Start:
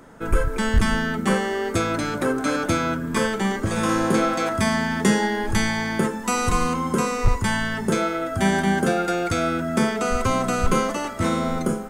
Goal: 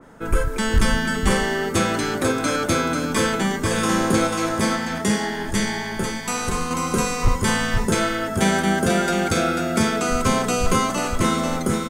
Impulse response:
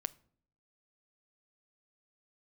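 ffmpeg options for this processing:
-filter_complex "[0:a]asettb=1/sr,asplit=3[a][b][c];[a]atrim=end=4.274[d];[b]atrim=start=4.27:end=6.71,asetpts=PTS-STARTPTS,afade=t=in:d=0.004:c=qsin,afade=t=out:st=2.436:d=0.004:c=qsin,flanger=delay=9.1:depth=7.2:regen=69:speed=1.2:shape=triangular[e];[c]atrim=start=6.706[f];[d][e]acrossfade=d=0.004:c1=hsin:c2=qsin[g];[g][f]acrossfade=d=0.004:c1=qsin:c2=hsin,aecho=1:1:491:0.596,adynamicequalizer=threshold=0.0141:dfrequency=2700:dqfactor=0.7:tfrequency=2700:tqfactor=0.7:attack=5:release=100:ratio=0.375:range=2.5:mode=boostabove:tftype=highshelf"

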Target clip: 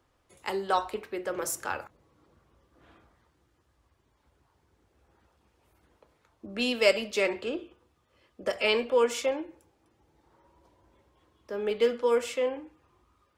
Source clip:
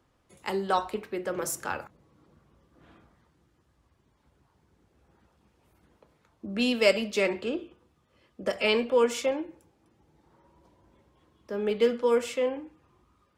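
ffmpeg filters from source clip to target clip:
-af "equalizer=f=180:t=o:w=1.1:g=-8"

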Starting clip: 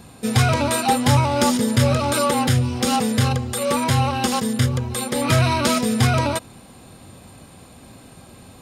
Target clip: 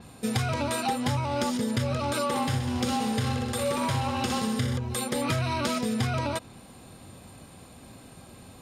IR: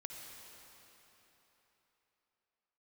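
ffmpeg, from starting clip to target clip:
-filter_complex "[0:a]asettb=1/sr,asplit=3[a][b][c];[a]atrim=end=2.254[d];[b]atrim=start=2.25:end=4.77,asetpts=PTS-STARTPTS,afade=t=in:d=0.004:c=qsin,afade=t=out:st=2.516:d=0.004:c=qsin,aecho=1:1:60|126|198.6|278.5|366.3:0.631|0.398|0.251|0.158|0.1,atrim=end_sample=111132[e];[c]atrim=start=4.766[f];[d][e]acrossfade=d=0.004:c1=hsin:c2=qsin[g];[g][f]acrossfade=d=0.004:c1=qsin:c2=hsin,acompressor=threshold=-20dB:ratio=6,adynamicequalizer=threshold=0.00631:dfrequency=6800:dqfactor=0.7:tfrequency=6800:tqfactor=0.7:attack=5:release=100:ratio=0.375:range=2.5:mode=cutabove:tftype=highshelf,volume=-4dB"

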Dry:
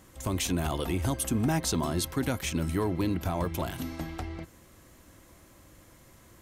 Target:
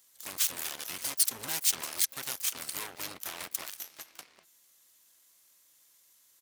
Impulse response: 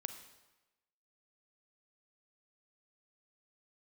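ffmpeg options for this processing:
-filter_complex "[0:a]aeval=exprs='0.133*(cos(1*acos(clip(val(0)/0.133,-1,1)))-cos(1*PI/2))+0.00944*(cos(5*acos(clip(val(0)/0.133,-1,1)))-cos(5*PI/2))+0.0335*(cos(7*acos(clip(val(0)/0.133,-1,1)))-cos(7*PI/2))+0.00422*(cos(8*acos(clip(val(0)/0.133,-1,1)))-cos(8*PI/2))':c=same,asplit=3[a][b][c];[b]asetrate=22050,aresample=44100,atempo=2,volume=-2dB[d];[c]asetrate=88200,aresample=44100,atempo=0.5,volume=-15dB[e];[a][d][e]amix=inputs=3:normalize=0,aderivative,volume=4.5dB"

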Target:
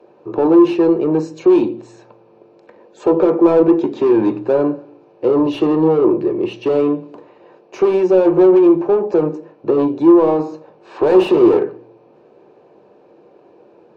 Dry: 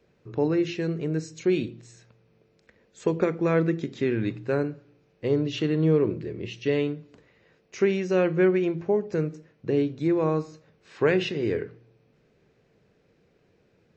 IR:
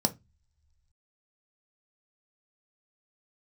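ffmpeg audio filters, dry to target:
-filter_complex "[0:a]asettb=1/sr,asplit=3[a][b][c];[a]atrim=end=11.144[d];[b]atrim=start=11.14:end=11.59,asetpts=PTS-STARTPTS,afade=t=in:d=0.004:c=qsin,afade=t=out:st=0.446:d=0.004:c=qsin,acontrast=80[e];[c]atrim=start=11.586[f];[d][e]acrossfade=d=0.004:c1=hsin:c2=qsin[g];[g][f]acrossfade=d=0.004:c1=qsin:c2=hsin,asplit=2[h][i];[i]highpass=f=720:p=1,volume=27dB,asoftclip=type=tanh:threshold=-7.5dB[j];[h][j]amix=inputs=2:normalize=0,lowpass=f=1.3k:p=1,volume=-6dB,asplit=2[k][l];[l]highpass=320,equalizer=f=340:t=q:w=4:g=8,equalizer=f=1k:t=q:w=4:g=6,equalizer=f=1.6k:t=q:w=4:g=-8,lowpass=f=2.2k:w=0.5412,lowpass=f=2.2k:w=1.3066[m];[1:a]atrim=start_sample=2205,highshelf=f=4k:g=5.5[n];[m][n]afir=irnorm=-1:irlink=0,volume=-3dB[o];[k][o]amix=inputs=2:normalize=0,volume=-7.5dB"

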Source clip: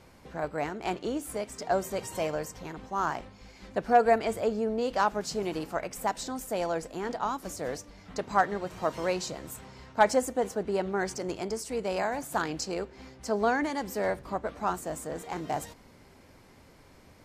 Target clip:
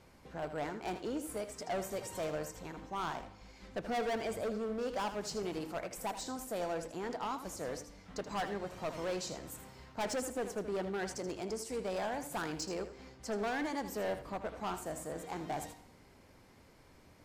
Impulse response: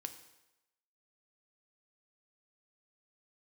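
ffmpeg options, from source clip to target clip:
-filter_complex "[0:a]asoftclip=type=hard:threshold=-27dB,asplit=2[a][b];[1:a]atrim=start_sample=2205,adelay=79[c];[b][c]afir=irnorm=-1:irlink=0,volume=-7dB[d];[a][d]amix=inputs=2:normalize=0,volume=-5.5dB"

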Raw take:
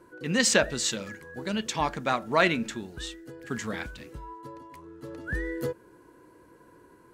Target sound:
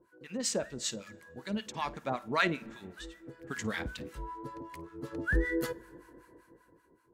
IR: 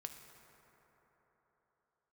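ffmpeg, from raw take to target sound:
-filter_complex "[0:a]dynaudnorm=f=200:g=11:m=15dB,acrossover=split=900[a][b];[a]aeval=exprs='val(0)*(1-1/2+1/2*cos(2*PI*5.2*n/s))':c=same[c];[b]aeval=exprs='val(0)*(1-1/2-1/2*cos(2*PI*5.2*n/s))':c=same[d];[c][d]amix=inputs=2:normalize=0,asplit=2[e][f];[1:a]atrim=start_sample=2205,asetrate=61740,aresample=44100,adelay=53[g];[f][g]afir=irnorm=-1:irlink=0,volume=-13dB[h];[e][h]amix=inputs=2:normalize=0,volume=-8dB"

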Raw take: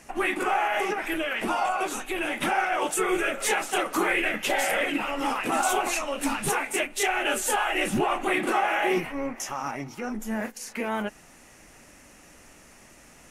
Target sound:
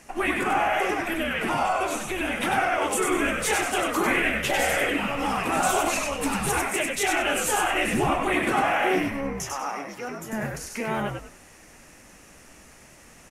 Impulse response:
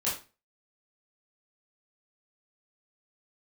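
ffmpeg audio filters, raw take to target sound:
-filter_complex "[0:a]asettb=1/sr,asplit=3[a][b][c];[a]atrim=end=9.364[d];[b]atrim=start=9.36:end=10.33,asetpts=PTS-STARTPTS,afade=t=in:d=0.004:c=qsin,afade=t=out:st=0.966:d=0.004:c=qsin,highpass=f=300:w=0.5412,highpass=f=300:w=1.3066[e];[c]atrim=start=10.326[f];[d][e]acrossfade=d=0.004:c1=hsin:c2=qsin[g];[g][f]acrossfade=d=0.004:c1=qsin:c2=hsin,asplit=5[h][i][j][k][l];[i]adelay=97,afreqshift=-79,volume=-3.5dB[m];[j]adelay=194,afreqshift=-158,volume=-14dB[n];[k]adelay=291,afreqshift=-237,volume=-24.4dB[o];[l]adelay=388,afreqshift=-316,volume=-34.9dB[p];[h][m][n][o][p]amix=inputs=5:normalize=0"

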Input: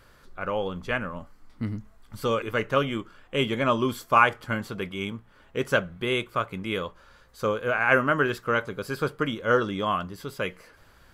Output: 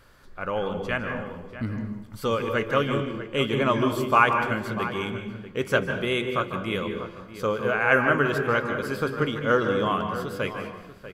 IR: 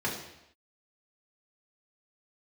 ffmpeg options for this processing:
-filter_complex "[0:a]asplit=2[a][b];[b]adelay=641.4,volume=-12dB,highshelf=f=4k:g=-14.4[c];[a][c]amix=inputs=2:normalize=0,asplit=2[d][e];[1:a]atrim=start_sample=2205,adelay=146[f];[e][f]afir=irnorm=-1:irlink=0,volume=-14dB[g];[d][g]amix=inputs=2:normalize=0"

